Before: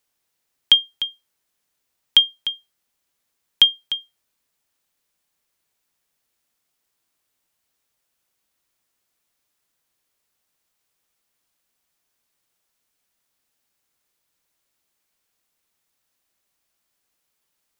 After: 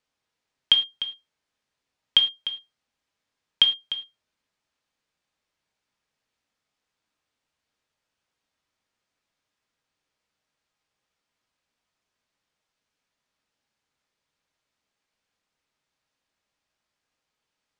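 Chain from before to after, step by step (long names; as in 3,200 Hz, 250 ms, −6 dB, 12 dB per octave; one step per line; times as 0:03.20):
high-frequency loss of the air 100 metres
reverb whose tail is shaped and stops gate 130 ms falling, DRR 4.5 dB
level −2 dB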